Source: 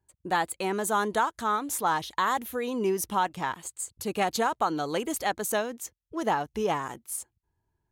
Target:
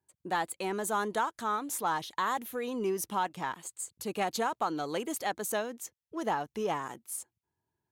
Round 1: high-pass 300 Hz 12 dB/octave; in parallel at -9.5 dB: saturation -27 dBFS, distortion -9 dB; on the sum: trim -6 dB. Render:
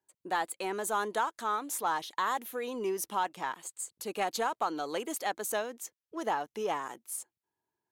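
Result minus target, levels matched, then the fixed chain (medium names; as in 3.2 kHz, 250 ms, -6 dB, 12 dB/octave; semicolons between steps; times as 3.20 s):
125 Hz band -7.5 dB
high-pass 130 Hz 12 dB/octave; in parallel at -9.5 dB: saturation -27 dBFS, distortion -9 dB; on the sum: trim -6 dB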